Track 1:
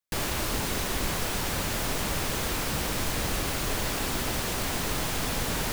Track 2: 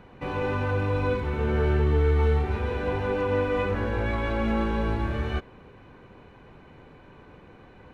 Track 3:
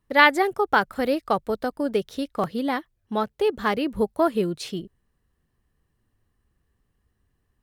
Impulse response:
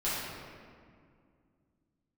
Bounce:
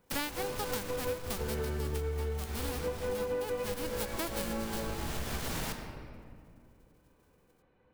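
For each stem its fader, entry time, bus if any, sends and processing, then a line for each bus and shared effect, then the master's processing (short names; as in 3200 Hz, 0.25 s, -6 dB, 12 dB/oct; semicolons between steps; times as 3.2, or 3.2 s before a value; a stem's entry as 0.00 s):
+3.0 dB, 0.00 s, send -11.5 dB, limiter -25.5 dBFS, peak gain reduction 9.5 dB; soft clip -35.5 dBFS, distortion -11 dB; auto duck -9 dB, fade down 1.70 s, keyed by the third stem
+1.0 dB, 0.00 s, send -18.5 dB, bell 500 Hz +6 dB 0.28 oct; notches 50/100 Hz; upward expander 2.5:1, over -33 dBFS
-9.0 dB, 0.00 s, no send, spectral whitening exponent 0.1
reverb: on, RT60 2.2 s, pre-delay 5 ms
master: compressor 12:1, threshold -31 dBFS, peak gain reduction 16 dB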